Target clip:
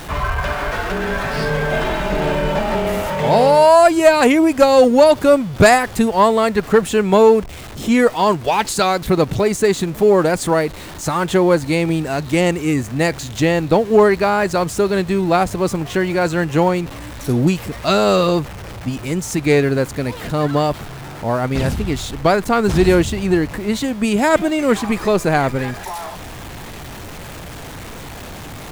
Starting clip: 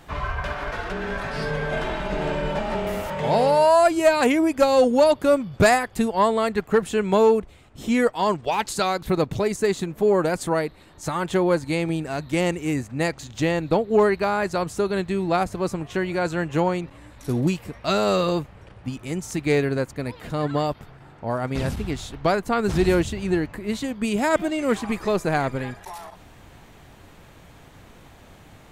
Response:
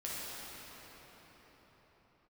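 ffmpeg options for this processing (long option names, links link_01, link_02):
-af "aeval=exprs='val(0)+0.5*0.0168*sgn(val(0))':channel_layout=same,volume=6dB"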